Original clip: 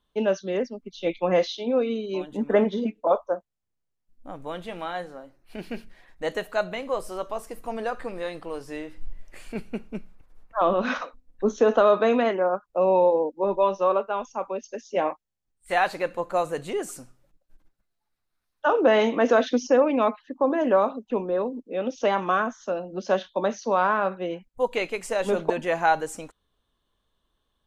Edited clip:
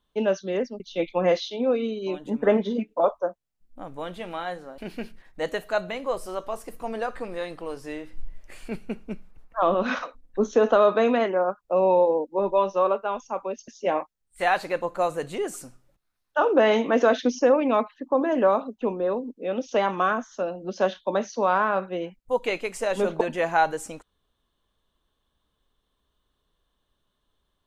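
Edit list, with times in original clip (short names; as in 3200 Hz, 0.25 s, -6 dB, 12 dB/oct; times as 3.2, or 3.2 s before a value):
shrink pauses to 35%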